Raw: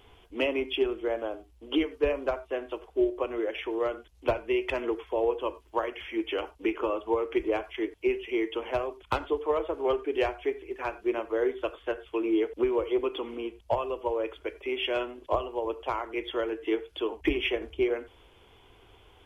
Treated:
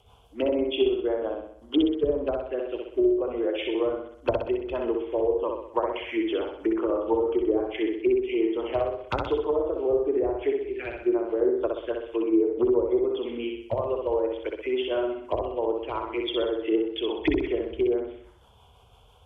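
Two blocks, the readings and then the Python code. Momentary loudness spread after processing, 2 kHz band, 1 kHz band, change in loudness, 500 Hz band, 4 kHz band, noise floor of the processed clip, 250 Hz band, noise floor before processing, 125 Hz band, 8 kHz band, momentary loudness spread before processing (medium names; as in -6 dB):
7 LU, -3.0 dB, 0.0 dB, +3.5 dB, +4.0 dB, +0.5 dB, -56 dBFS, +5.0 dB, -58 dBFS, +4.5 dB, no reading, 6 LU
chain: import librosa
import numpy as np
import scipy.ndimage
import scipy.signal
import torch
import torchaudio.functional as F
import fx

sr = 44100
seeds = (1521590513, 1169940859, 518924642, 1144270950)

p1 = np.minimum(x, 2.0 * 10.0 ** (-18.0 / 20.0) - x)
p2 = scipy.signal.sosfilt(scipy.signal.butter(2, 48.0, 'highpass', fs=sr, output='sos'), p1)
p3 = fx.env_lowpass_down(p2, sr, base_hz=550.0, full_db=-22.0)
p4 = fx.dynamic_eq(p3, sr, hz=3600.0, q=0.73, threshold_db=-49.0, ratio=4.0, max_db=4)
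p5 = fx.rotary(p4, sr, hz=6.0)
p6 = fx.env_phaser(p5, sr, low_hz=300.0, high_hz=3000.0, full_db=-28.0)
p7 = p6 + fx.echo_feedback(p6, sr, ms=63, feedback_pct=51, wet_db=-3.5, dry=0)
y = p7 * 10.0 ** (4.5 / 20.0)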